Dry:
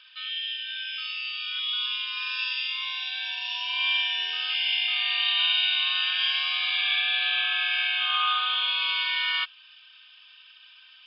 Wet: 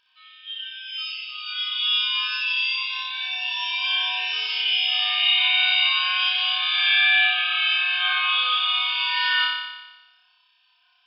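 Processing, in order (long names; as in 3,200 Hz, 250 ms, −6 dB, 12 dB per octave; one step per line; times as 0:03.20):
noise reduction from a noise print of the clip's start 17 dB
on a send: flutter between parallel walls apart 5.1 metres, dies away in 1.1 s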